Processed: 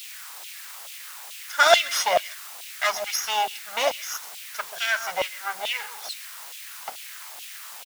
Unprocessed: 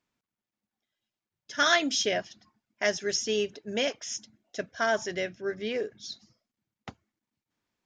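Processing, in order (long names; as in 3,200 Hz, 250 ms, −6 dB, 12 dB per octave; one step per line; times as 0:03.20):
lower of the sound and its delayed copy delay 1.4 ms
low-shelf EQ 440 Hz +8.5 dB
hum removal 68.94 Hz, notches 6
in parallel at −5 dB: bit-depth reduction 6 bits, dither triangular
on the sum: slap from a distant wall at 23 metres, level −16 dB
auto-filter high-pass saw down 2.3 Hz 630–3,100 Hz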